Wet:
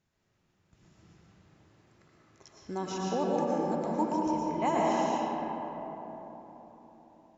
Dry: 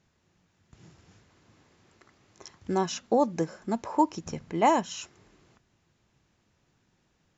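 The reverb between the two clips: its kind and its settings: digital reverb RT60 4.3 s, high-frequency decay 0.35×, pre-delay 75 ms, DRR -5.5 dB; gain -9 dB

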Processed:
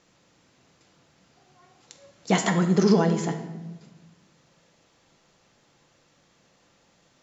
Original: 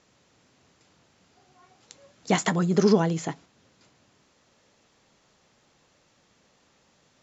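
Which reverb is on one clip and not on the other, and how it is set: shoebox room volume 680 m³, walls mixed, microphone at 0.77 m

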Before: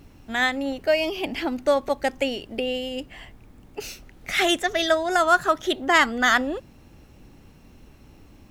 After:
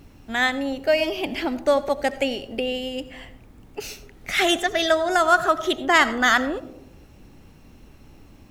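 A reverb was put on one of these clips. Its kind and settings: digital reverb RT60 0.78 s, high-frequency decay 0.25×, pre-delay 45 ms, DRR 14.5 dB; gain +1 dB

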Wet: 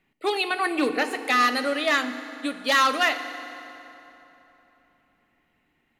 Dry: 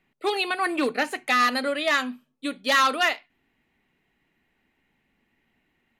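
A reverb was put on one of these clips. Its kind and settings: FDN reverb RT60 3.4 s, high-frequency decay 0.7×, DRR 9 dB

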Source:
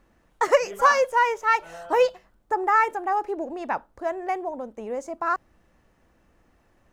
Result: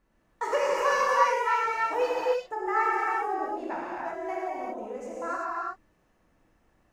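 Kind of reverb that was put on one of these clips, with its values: non-linear reverb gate 0.41 s flat, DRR -7 dB; gain -11.5 dB

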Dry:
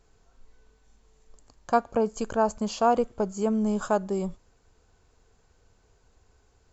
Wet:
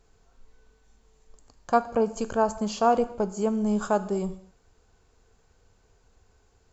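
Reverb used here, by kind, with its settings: non-linear reverb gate 0.27 s falling, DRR 11.5 dB

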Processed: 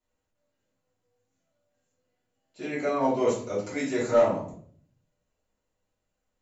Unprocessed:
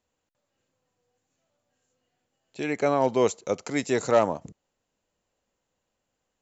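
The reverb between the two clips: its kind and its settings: shoebox room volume 64 m³, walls mixed, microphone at 2.6 m; gain -14.5 dB

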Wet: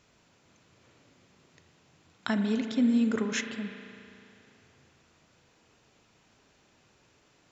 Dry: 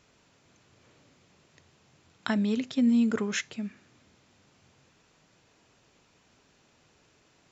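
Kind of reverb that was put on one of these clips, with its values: spring tank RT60 2.8 s, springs 36 ms, chirp 30 ms, DRR 6 dB; gain -1 dB

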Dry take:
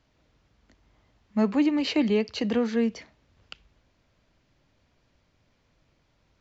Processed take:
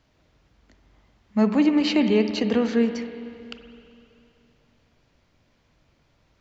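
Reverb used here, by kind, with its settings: spring tank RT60 2.7 s, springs 42/47 ms, chirp 55 ms, DRR 7.5 dB; gain +3 dB

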